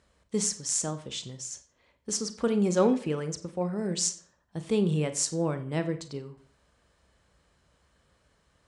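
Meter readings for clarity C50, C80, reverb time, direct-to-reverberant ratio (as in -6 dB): 13.0 dB, 17.0 dB, 0.55 s, 9.5 dB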